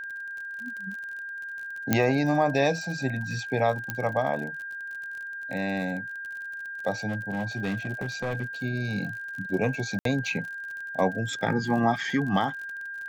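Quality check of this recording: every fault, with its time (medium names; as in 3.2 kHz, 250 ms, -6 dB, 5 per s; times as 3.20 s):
crackle 48 per s -35 dBFS
whine 1.6 kHz -34 dBFS
1.93 s: pop -6 dBFS
3.90 s: pop -14 dBFS
7.08–8.44 s: clipped -24.5 dBFS
9.99–10.05 s: dropout 63 ms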